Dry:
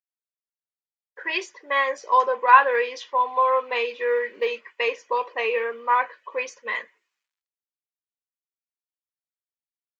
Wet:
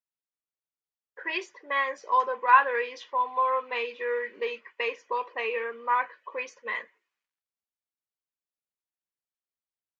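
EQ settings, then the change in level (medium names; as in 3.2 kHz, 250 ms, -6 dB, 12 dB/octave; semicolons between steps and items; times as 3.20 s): dynamic bell 590 Hz, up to -6 dB, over -35 dBFS, Q 1.2; treble shelf 3.7 kHz -9 dB; -2.0 dB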